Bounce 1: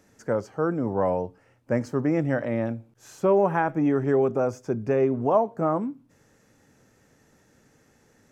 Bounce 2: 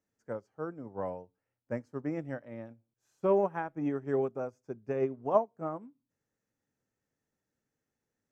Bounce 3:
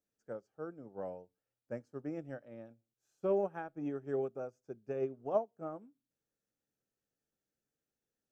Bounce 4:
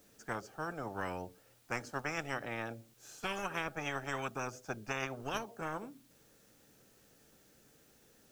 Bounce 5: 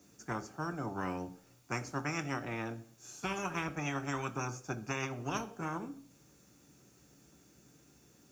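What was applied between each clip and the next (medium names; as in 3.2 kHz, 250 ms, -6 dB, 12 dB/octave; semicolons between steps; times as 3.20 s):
upward expansion 2.5:1, over -32 dBFS; trim -3 dB
graphic EQ with 31 bands 100 Hz -10 dB, 160 Hz -3 dB, 250 Hz -4 dB, 1 kHz -10 dB, 2 kHz -8 dB; trim -4.5 dB
spectrum-flattening compressor 10:1; trim -1.5 dB
reverberation RT60 0.55 s, pre-delay 3 ms, DRR 8.5 dB; trim -3.5 dB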